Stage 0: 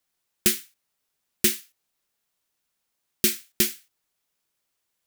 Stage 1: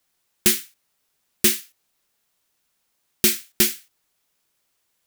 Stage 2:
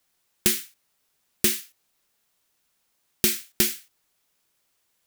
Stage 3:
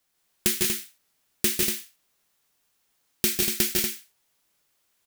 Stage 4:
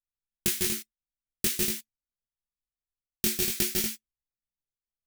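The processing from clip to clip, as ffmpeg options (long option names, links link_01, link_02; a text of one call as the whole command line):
ffmpeg -i in.wav -af "asoftclip=type=tanh:threshold=-14.5dB,volume=6.5dB" out.wav
ffmpeg -i in.wav -af "acompressor=threshold=-17dB:ratio=6" out.wav
ffmpeg -i in.wav -af "aecho=1:1:149|160|184|239:0.531|0.596|0.447|0.501,volume=-2.5dB" out.wav
ffmpeg -i in.wav -af "bass=frequency=250:gain=4,treble=frequency=4000:gain=2,flanger=delay=17.5:depth=6:speed=0.49,anlmdn=0.398,volume=-1.5dB" out.wav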